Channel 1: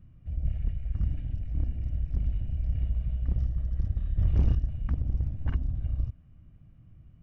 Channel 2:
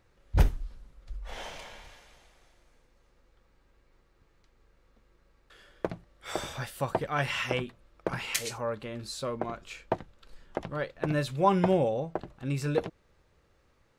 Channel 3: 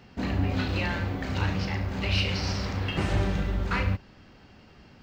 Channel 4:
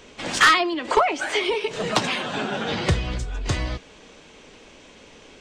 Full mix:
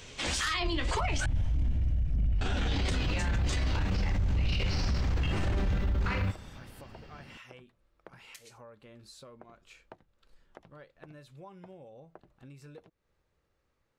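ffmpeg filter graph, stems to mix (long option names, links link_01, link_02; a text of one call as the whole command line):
ffmpeg -i stem1.wav -i stem2.wav -i stem3.wav -i stem4.wav -filter_complex "[0:a]dynaudnorm=framelen=110:gausssize=17:maxgain=8.5dB,volume=-1.5dB[link_01];[1:a]acompressor=threshold=-38dB:ratio=5,volume=-10.5dB[link_02];[2:a]adelay=2350,volume=0dB[link_03];[3:a]highshelf=frequency=2200:gain=10,flanger=delay=9.8:depth=8.2:regen=38:speed=2:shape=triangular,volume=-2dB,asplit=3[link_04][link_05][link_06];[link_04]atrim=end=1.26,asetpts=PTS-STARTPTS,afade=type=out:start_time=1.256:duration=0.004:curve=hsin[link_07];[link_05]atrim=start=1.26:end=2.41,asetpts=PTS-STARTPTS,volume=0[link_08];[link_06]atrim=start=2.41,asetpts=PTS-STARTPTS,afade=type=in:duration=0.004:curve=hsin[link_09];[link_07][link_08][link_09]concat=n=3:v=0:a=1[link_10];[link_01][link_02][link_03][link_10]amix=inputs=4:normalize=0,alimiter=limit=-22.5dB:level=0:latency=1:release=15" out.wav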